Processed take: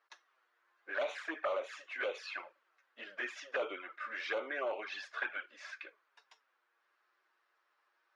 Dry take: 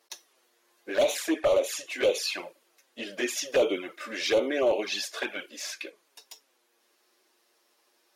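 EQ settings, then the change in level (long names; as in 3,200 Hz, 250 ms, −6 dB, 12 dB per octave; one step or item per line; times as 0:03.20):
resonant band-pass 1,400 Hz, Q 2.4
high-frequency loss of the air 60 metres
+1.0 dB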